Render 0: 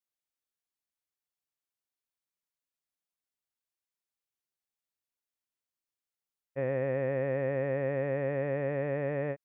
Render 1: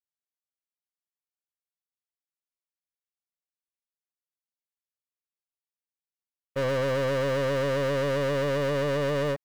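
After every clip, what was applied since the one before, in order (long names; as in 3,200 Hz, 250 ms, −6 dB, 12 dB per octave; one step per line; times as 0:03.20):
leveller curve on the samples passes 5
level −2.5 dB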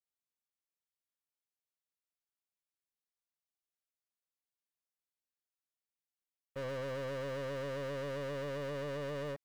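brickwall limiter −32.5 dBFS, peak gain reduction 8.5 dB
level −4.5 dB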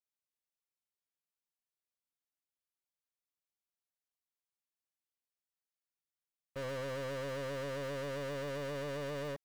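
leveller curve on the samples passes 2
level −1 dB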